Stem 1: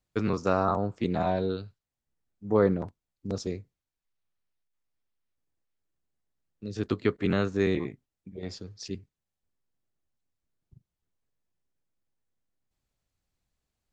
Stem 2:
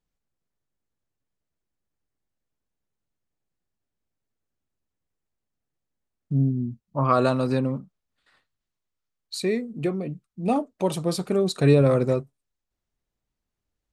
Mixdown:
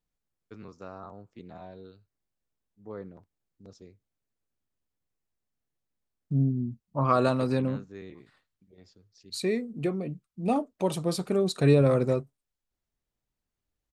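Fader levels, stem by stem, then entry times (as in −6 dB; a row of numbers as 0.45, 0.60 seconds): −18.0, −3.0 decibels; 0.35, 0.00 seconds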